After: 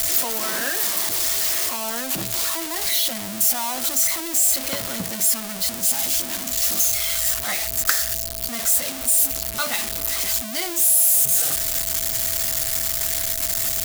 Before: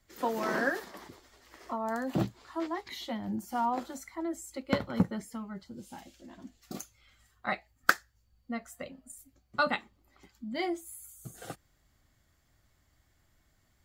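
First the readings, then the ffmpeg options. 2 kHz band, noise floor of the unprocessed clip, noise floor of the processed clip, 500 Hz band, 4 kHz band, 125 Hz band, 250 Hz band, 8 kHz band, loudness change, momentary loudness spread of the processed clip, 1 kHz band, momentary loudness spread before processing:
+6.0 dB, -71 dBFS, -30 dBFS, +4.0 dB, +20.5 dB, +2.5 dB, 0.0 dB, +30.5 dB, +15.0 dB, 6 LU, +2.5 dB, 19 LU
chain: -af "aeval=exprs='val(0)+0.5*0.0668*sgn(val(0))':c=same,crystalizer=i=7.5:c=0,aeval=exprs='val(0)+0.0282*sin(2*PI*660*n/s)':c=same,volume=-8dB"

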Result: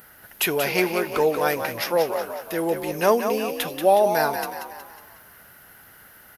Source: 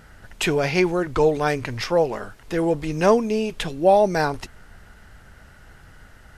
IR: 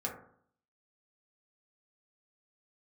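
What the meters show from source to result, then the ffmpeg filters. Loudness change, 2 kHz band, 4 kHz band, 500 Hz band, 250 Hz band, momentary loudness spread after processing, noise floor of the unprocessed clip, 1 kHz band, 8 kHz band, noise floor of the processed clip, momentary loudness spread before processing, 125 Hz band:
-1.5 dB, +0.5 dB, +1.0 dB, -1.5 dB, -4.5 dB, 11 LU, -49 dBFS, 0.0 dB, +3.5 dB, -50 dBFS, 9 LU, -9.0 dB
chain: -filter_complex "[0:a]highpass=f=410:p=1,aexciter=amount=6.1:drive=9.9:freq=11k,asplit=7[a][b][c][d][e][f][g];[b]adelay=183,afreqshift=42,volume=-7.5dB[h];[c]adelay=366,afreqshift=84,volume=-13.9dB[i];[d]adelay=549,afreqshift=126,volume=-20.3dB[j];[e]adelay=732,afreqshift=168,volume=-26.6dB[k];[f]adelay=915,afreqshift=210,volume=-33dB[l];[g]adelay=1098,afreqshift=252,volume=-39.4dB[m];[a][h][i][j][k][l][m]amix=inputs=7:normalize=0"

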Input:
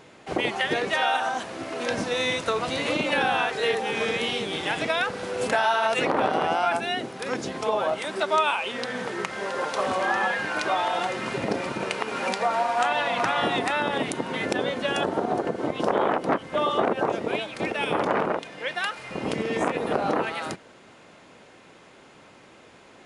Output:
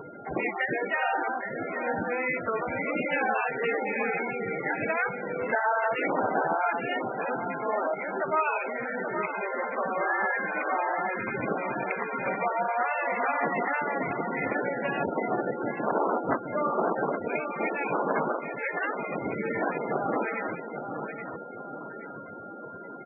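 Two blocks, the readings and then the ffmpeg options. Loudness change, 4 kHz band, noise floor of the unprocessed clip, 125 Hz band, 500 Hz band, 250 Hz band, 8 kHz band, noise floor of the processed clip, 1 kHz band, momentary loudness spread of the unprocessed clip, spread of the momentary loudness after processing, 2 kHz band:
-3.0 dB, under -20 dB, -51 dBFS, -4.0 dB, -3.0 dB, -3.0 dB, under -40 dB, -41 dBFS, -2.5 dB, 7 LU, 8 LU, -2.0 dB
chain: -filter_complex "[0:a]aemphasis=mode=reproduction:type=50fm,afftdn=nr=32:nf=-44,highshelf=f=2.8k:t=q:w=3:g=-7,acompressor=mode=upward:threshold=-26dB:ratio=2.5,aexciter=amount=14.2:drive=3.7:freq=9.3k,aeval=exprs='val(0)+0.00708*sin(2*PI*1400*n/s)':c=same,asoftclip=type=tanh:threshold=-9.5dB,asplit=2[a][b];[b]adelay=825,lowpass=f=3.5k:p=1,volume=-7.5dB,asplit=2[c][d];[d]adelay=825,lowpass=f=3.5k:p=1,volume=0.48,asplit=2[e][f];[f]adelay=825,lowpass=f=3.5k:p=1,volume=0.48,asplit=2[g][h];[h]adelay=825,lowpass=f=3.5k:p=1,volume=0.48,asplit=2[i][j];[j]adelay=825,lowpass=f=3.5k:p=1,volume=0.48,asplit=2[k][l];[l]adelay=825,lowpass=f=3.5k:p=1,volume=0.48[m];[a][c][e][g][i][k][m]amix=inputs=7:normalize=0,volume=-4dB" -ar 24000 -c:a libmp3lame -b:a 8k

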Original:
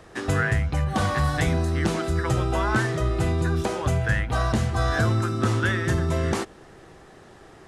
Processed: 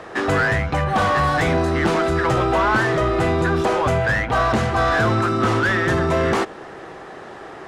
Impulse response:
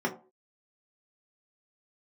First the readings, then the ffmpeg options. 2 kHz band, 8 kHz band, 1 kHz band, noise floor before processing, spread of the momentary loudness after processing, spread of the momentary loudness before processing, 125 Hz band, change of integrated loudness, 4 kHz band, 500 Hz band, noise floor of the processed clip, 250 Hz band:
+7.5 dB, 0.0 dB, +9.5 dB, -49 dBFS, 17 LU, 3 LU, 0.0 dB, +5.0 dB, +5.0 dB, +8.5 dB, -37 dBFS, +5.0 dB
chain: -filter_complex "[0:a]asplit=2[a][b];[b]highpass=f=720:p=1,volume=22dB,asoftclip=type=tanh:threshold=-9.5dB[c];[a][c]amix=inputs=2:normalize=0,lowpass=f=1.3k:p=1,volume=-6dB,volume=1.5dB"

